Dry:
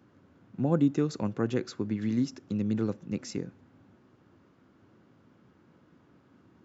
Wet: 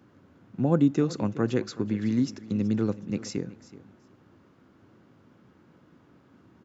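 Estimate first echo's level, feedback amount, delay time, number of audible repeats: −17.5 dB, 16%, 375 ms, 2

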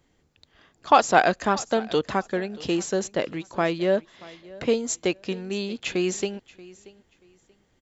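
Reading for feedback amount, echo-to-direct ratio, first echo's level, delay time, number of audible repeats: 23%, −21.0 dB, −21.0 dB, 632 ms, 2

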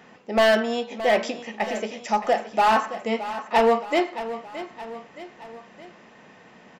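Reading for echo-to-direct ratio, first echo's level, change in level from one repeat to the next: −11.5 dB, −13.0 dB, −5.5 dB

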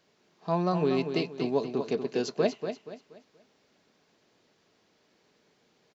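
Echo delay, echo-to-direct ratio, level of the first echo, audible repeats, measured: 238 ms, −7.5 dB, −8.0 dB, 3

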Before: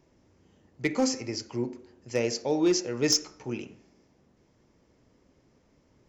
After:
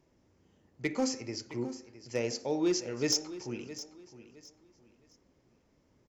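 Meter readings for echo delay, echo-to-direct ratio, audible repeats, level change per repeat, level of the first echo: 664 ms, −14.0 dB, 2, −11.5 dB, −14.5 dB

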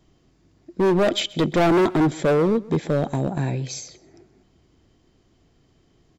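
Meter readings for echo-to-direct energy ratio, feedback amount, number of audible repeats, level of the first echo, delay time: −21.0 dB, 21%, 2, −21.0 dB, 130 ms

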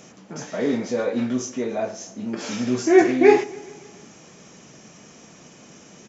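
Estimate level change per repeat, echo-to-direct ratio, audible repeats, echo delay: −4.5 dB, −20.0 dB, 3, 142 ms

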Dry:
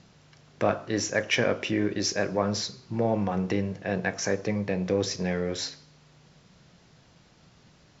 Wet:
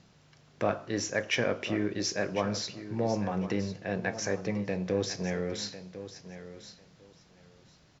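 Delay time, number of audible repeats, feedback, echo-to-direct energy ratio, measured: 1,050 ms, 2, 18%, −13.0 dB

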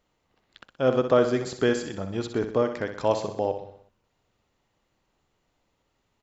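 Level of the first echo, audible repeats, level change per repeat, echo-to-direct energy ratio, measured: −9.0 dB, 5, −5.5 dB, −7.5 dB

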